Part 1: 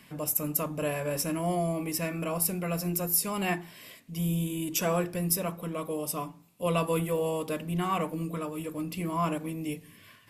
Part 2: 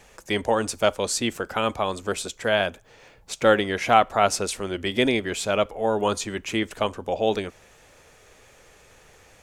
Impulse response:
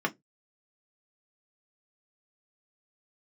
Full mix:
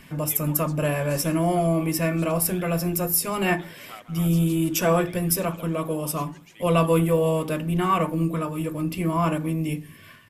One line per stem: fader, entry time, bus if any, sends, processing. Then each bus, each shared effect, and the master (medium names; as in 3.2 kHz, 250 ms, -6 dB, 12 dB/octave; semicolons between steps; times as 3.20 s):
+2.0 dB, 0.00 s, send -11 dB, no echo send, none
-10.0 dB, 0.00 s, no send, echo send -21.5 dB, high-pass 1.3 kHz 6 dB/octave; vibrato 0.9 Hz 80 cents; phaser 0.74 Hz, delay 4.2 ms, feedback 59%; auto duck -11 dB, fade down 0.70 s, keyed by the first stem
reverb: on, RT60 0.15 s, pre-delay 3 ms
echo: feedback delay 159 ms, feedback 54%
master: bass shelf 130 Hz +10.5 dB